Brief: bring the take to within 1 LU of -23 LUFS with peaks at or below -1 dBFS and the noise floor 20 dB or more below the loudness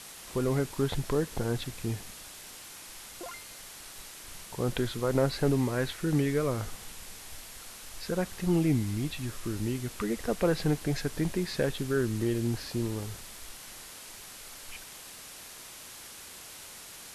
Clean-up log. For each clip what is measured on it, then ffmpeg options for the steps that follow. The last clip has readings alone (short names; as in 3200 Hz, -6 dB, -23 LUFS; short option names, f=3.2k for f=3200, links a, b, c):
noise floor -47 dBFS; noise floor target -51 dBFS; loudness -31.0 LUFS; peak -13.0 dBFS; loudness target -23.0 LUFS
-> -af "afftdn=nr=6:nf=-47"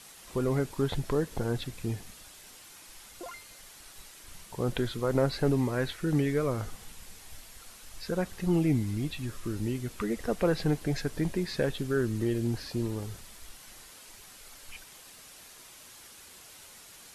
noise floor -51 dBFS; loudness -31.0 LUFS; peak -13.5 dBFS; loudness target -23.0 LUFS
-> -af "volume=8dB"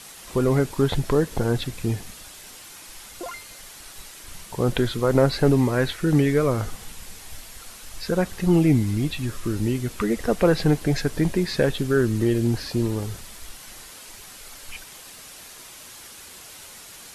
loudness -23.0 LUFS; peak -5.5 dBFS; noise floor -43 dBFS